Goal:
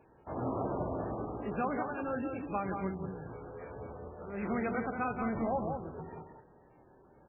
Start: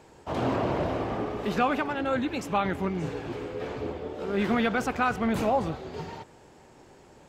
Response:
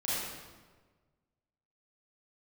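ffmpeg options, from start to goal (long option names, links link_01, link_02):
-filter_complex "[0:a]lowpass=frequency=1800:poles=1,asettb=1/sr,asplit=3[link_01][link_02][link_03];[link_01]atrim=end=2.964[link_04];[link_02]atrim=start=2.96:end=4.43,asetpts=PTS-STARTPTS,afade=type=in:duration=0.004:curve=qsin,afade=type=out:start_time=1.466:duration=0.004:curve=qsin,equalizer=frequency=320:width=1.4:gain=-8.5[link_05];[link_03]atrim=start=4.426[link_06];[link_04][link_05]acrossfade=duration=0.004:curve1=hsin:curve2=qsin[link_07];[link_07][link_06]acrossfade=duration=0.004:curve1=qsin:curve2=hsin,asettb=1/sr,asplit=3[link_08][link_09][link_10];[link_08]atrim=end=4.964[link_11];[link_09]atrim=start=4.96:end=5.8,asetpts=PTS-STARTPTS,afade=type=in:duration=0.004:curve=qsin,afade=type=out:start_time=0.836:duration=0.004:curve=qsin,acrusher=bits=7:mix=0:aa=0.5[link_12];[link_10]atrim=start=5.796[link_13];[link_11][link_12]acrossfade=duration=0.004:curve1=hsin:curve2=qsin[link_14];[link_14][link_13]acrossfade=duration=0.004:curve1=qsin:curve2=hsin,aecho=1:1:179:0.531,asplit=2[link_15][link_16];[1:a]atrim=start_sample=2205[link_17];[link_16][link_17]afir=irnorm=-1:irlink=0,volume=-25dB[link_18];[link_15][link_18]amix=inputs=2:normalize=0,volume=-8dB" -ar 12000 -c:a libmp3lame -b:a 8k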